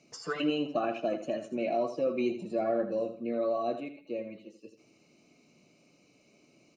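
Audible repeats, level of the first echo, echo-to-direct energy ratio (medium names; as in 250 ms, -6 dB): 3, -10.5 dB, -10.0 dB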